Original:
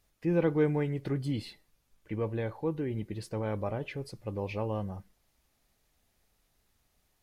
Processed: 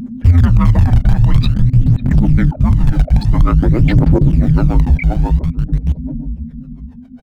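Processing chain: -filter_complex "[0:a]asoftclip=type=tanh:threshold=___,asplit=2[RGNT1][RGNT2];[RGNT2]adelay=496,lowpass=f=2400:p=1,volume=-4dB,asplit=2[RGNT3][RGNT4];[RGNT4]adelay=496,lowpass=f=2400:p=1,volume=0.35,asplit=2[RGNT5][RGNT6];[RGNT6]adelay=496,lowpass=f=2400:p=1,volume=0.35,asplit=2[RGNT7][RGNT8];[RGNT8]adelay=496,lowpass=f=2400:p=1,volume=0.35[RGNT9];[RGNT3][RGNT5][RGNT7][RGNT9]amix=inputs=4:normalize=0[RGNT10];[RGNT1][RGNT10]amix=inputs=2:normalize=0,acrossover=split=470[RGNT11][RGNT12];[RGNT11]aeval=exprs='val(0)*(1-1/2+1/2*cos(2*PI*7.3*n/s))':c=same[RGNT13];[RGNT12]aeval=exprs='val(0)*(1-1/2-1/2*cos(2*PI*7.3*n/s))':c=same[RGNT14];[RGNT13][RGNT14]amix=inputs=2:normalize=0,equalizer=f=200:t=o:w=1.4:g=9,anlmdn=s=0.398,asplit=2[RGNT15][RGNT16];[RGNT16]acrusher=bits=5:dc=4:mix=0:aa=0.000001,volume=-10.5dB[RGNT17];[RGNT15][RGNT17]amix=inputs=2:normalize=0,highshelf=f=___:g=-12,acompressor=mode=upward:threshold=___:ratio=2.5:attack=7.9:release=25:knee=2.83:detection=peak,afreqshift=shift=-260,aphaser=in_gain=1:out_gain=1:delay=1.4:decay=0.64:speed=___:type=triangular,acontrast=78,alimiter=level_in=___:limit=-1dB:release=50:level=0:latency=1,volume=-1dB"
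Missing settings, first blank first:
-23dB, 7000, -29dB, 0.49, 11.5dB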